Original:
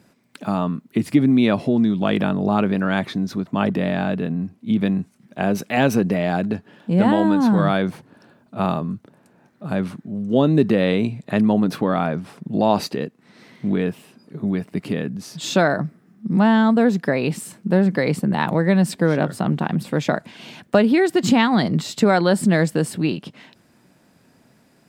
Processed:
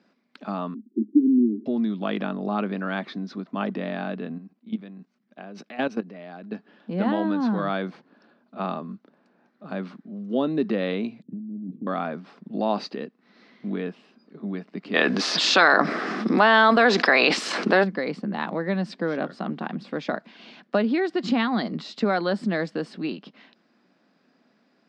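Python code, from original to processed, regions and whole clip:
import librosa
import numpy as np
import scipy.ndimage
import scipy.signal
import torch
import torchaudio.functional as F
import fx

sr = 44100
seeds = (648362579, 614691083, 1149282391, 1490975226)

y = fx.chain(x, sr, fx.cheby1_bandpass(low_hz=210.0, high_hz=430.0, order=5),
    fx.comb(ms=3.3, depth=0.94), at=(0.74, 1.66))
y = fx.chain(y, sr, fx.highpass(hz=42.0, slope=12),
    fx.level_steps(step_db=16), at=(4.38, 6.52))
y = fx.chain(y, sr, fx.cheby2_bandstop(low_hz=690.0, high_hz=8800.0, order=4, stop_db=50),
    fx.over_compress(threshold_db=-25.0, ratio=-1.0), at=(11.22, 11.87))
y = fx.spec_clip(y, sr, under_db=13, at=(14.93, 17.83), fade=0.02)
y = fx.highpass(y, sr, hz=650.0, slope=6, at=(14.93, 17.83), fade=0.02)
y = fx.env_flatten(y, sr, amount_pct=70, at=(14.93, 17.83), fade=0.02)
y = scipy.signal.sosfilt(scipy.signal.cheby1(3, 1.0, [210.0, 4900.0], 'bandpass', fs=sr, output='sos'), y)
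y = fx.peak_eq(y, sr, hz=1200.0, db=2.0, octaves=0.77)
y = fx.notch(y, sr, hz=920.0, q=14.0)
y = y * librosa.db_to_amplitude(-6.5)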